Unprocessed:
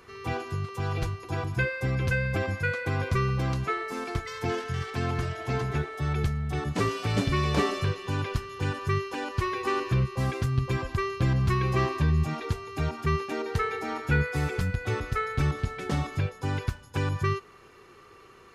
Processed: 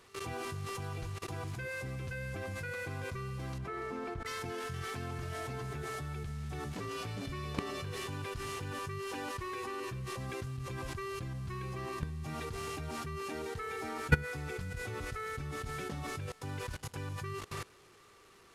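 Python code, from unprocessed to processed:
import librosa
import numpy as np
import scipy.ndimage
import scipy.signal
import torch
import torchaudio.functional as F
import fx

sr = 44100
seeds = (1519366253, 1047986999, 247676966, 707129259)

y = fx.delta_mod(x, sr, bps=64000, step_db=-37.5)
y = fx.lowpass(y, sr, hz=1100.0, slope=6, at=(3.58, 4.26))
y = fx.echo_feedback(y, sr, ms=287, feedback_pct=33, wet_db=-19)
y = fx.level_steps(y, sr, step_db=21)
y = y * librosa.db_to_amplitude(2.5)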